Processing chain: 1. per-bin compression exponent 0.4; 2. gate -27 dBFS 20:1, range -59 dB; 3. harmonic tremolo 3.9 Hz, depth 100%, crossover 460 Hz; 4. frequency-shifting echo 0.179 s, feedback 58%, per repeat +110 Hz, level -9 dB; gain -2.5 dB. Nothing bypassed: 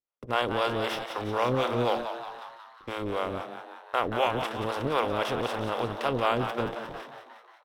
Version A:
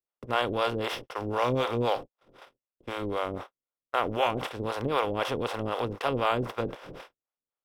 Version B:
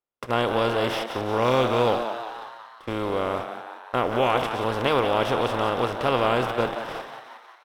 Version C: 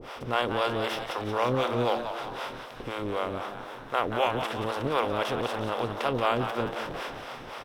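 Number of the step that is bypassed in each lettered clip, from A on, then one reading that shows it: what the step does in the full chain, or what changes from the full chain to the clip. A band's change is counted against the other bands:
4, echo-to-direct -7.0 dB to none; 3, loudness change +5.0 LU; 2, momentary loudness spread change -4 LU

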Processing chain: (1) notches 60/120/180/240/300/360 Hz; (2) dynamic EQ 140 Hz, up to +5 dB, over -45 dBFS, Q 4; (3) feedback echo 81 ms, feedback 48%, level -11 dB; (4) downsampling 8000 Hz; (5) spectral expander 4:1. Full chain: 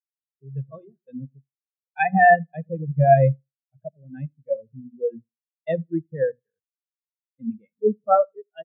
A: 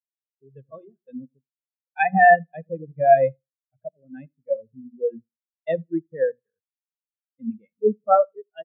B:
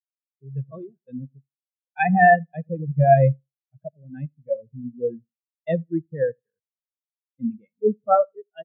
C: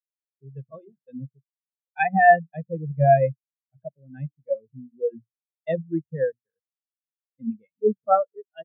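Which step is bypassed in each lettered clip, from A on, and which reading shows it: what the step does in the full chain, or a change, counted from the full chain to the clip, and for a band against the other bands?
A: 2, 125 Hz band -13.5 dB; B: 1, 250 Hz band +2.5 dB; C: 3, momentary loudness spread change +2 LU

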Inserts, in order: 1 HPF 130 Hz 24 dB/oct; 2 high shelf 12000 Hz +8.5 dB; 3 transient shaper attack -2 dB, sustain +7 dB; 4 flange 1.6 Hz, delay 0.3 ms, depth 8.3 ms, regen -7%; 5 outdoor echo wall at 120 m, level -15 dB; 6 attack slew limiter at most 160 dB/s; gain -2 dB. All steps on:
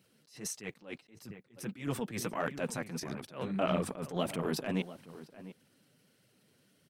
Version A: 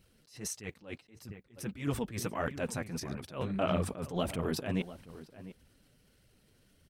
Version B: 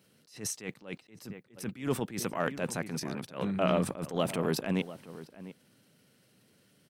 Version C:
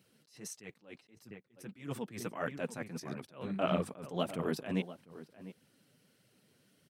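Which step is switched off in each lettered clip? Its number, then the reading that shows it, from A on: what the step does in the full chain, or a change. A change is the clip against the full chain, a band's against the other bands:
1, 125 Hz band +3.0 dB; 4, loudness change +3.5 LU; 3, 8 kHz band -4.5 dB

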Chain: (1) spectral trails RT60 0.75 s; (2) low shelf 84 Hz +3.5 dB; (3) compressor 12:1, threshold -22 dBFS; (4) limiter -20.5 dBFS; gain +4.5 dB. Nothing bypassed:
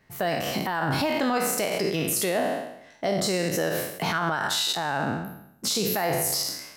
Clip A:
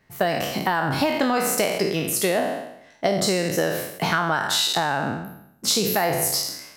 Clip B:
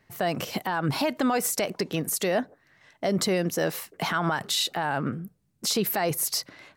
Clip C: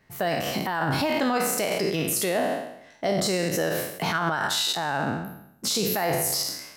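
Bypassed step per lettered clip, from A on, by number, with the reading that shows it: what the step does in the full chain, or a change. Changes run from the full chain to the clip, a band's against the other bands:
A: 4, mean gain reduction 2.0 dB; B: 1, 250 Hz band +2.0 dB; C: 3, mean gain reduction 3.0 dB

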